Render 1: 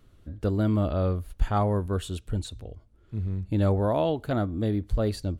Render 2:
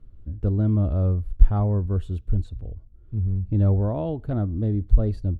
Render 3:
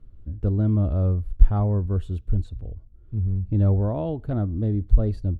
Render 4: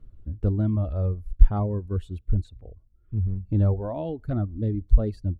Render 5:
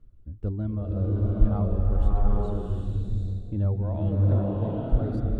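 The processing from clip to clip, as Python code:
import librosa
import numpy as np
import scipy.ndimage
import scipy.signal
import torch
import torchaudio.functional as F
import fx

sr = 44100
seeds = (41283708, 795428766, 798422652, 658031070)

y1 = fx.tilt_eq(x, sr, slope=-4.0)
y1 = y1 * 10.0 ** (-7.5 / 20.0)
y2 = y1
y3 = fx.dereverb_blind(y2, sr, rt60_s=1.5)
y4 = fx.rev_bloom(y3, sr, seeds[0], attack_ms=790, drr_db=-5.0)
y4 = y4 * 10.0 ** (-6.0 / 20.0)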